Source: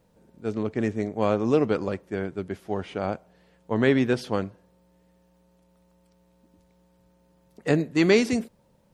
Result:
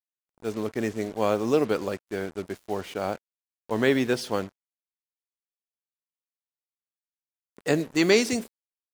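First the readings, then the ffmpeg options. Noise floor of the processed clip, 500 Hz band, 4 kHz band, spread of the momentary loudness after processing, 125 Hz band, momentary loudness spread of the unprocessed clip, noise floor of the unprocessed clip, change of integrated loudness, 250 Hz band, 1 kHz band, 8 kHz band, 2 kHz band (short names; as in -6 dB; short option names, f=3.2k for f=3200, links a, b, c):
under -85 dBFS, -0.5 dB, +3.5 dB, 13 LU, -5.5 dB, 13 LU, -63 dBFS, -1.0 dB, -2.5 dB, 0.0 dB, +6.5 dB, +0.5 dB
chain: -af "bass=f=250:g=-6,treble=f=4k:g=7,acrusher=bits=6:mix=0:aa=0.5"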